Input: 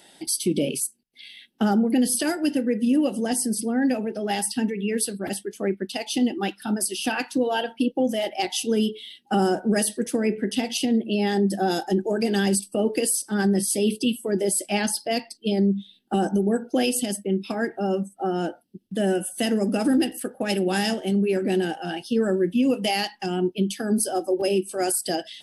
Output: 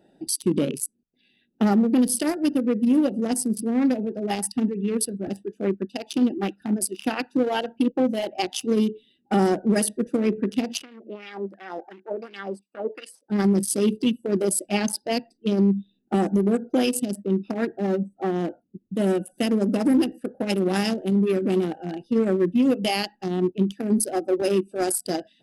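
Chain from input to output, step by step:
adaptive Wiener filter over 41 samples
0:10.82–0:13.30: LFO wah 2.8 Hz 500–2,600 Hz, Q 2.8
level +2 dB

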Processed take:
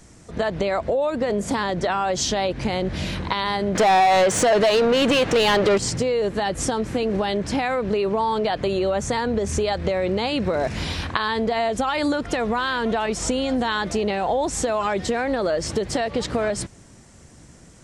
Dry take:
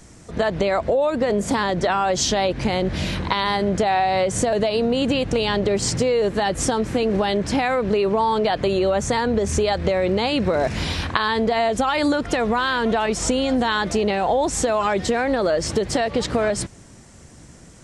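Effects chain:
0:03.75–0:05.78: mid-hump overdrive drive 21 dB, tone 4,200 Hz, clips at −7 dBFS
level −2.5 dB

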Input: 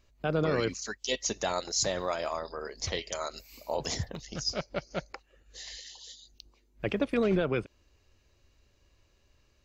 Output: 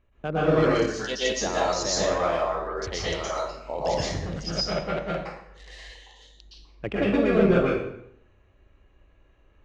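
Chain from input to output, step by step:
adaptive Wiener filter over 9 samples
high-frequency loss of the air 83 metres
dense smooth reverb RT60 0.72 s, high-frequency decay 0.8×, pre-delay 105 ms, DRR −8 dB

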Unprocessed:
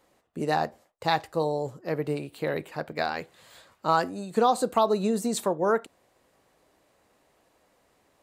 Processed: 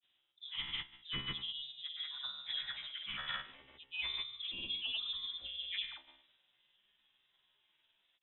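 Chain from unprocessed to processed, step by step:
every frequency bin delayed by itself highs late, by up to 217 ms
reversed playback
downward compressor 5 to 1, threshold −40 dBFS, peak gain reduction 19.5 dB
reversed playback
flanger 0.4 Hz, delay 6.4 ms, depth 6.4 ms, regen +44%
tuned comb filter 68 Hz, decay 0.71 s, harmonics all, mix 90%
voice inversion scrambler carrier 3,800 Hz
granular cloud, pitch spread up and down by 0 semitones
multiband upward and downward expander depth 40%
level +16.5 dB

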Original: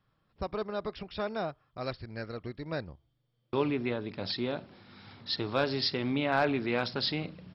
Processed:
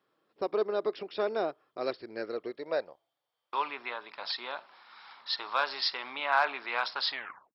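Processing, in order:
turntable brake at the end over 0.44 s
high-pass filter sweep 370 Hz → 1,000 Hz, 0:02.30–0:03.57

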